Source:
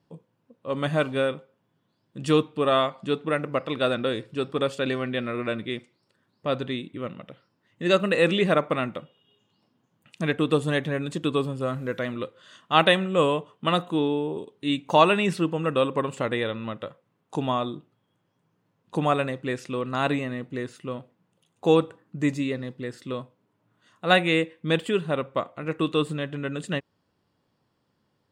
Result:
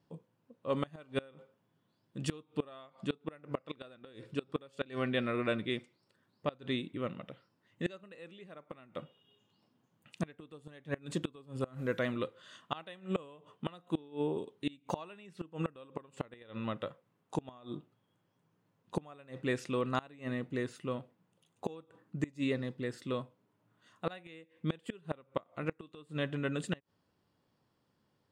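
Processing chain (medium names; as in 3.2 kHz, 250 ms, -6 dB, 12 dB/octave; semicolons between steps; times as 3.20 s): inverted gate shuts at -16 dBFS, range -26 dB; trim -4 dB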